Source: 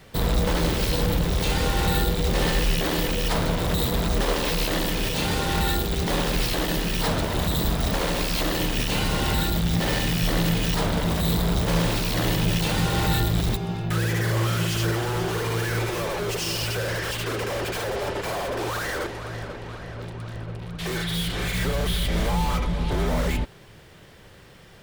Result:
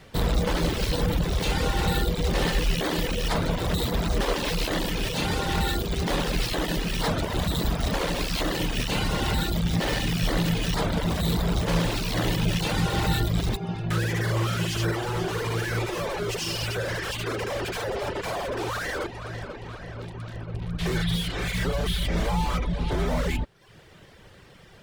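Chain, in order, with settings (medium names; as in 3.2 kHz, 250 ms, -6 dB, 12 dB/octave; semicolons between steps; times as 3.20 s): treble shelf 12 kHz -9.5 dB; reverb removal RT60 0.63 s; 20.54–21.16 s: bass shelf 190 Hz +9 dB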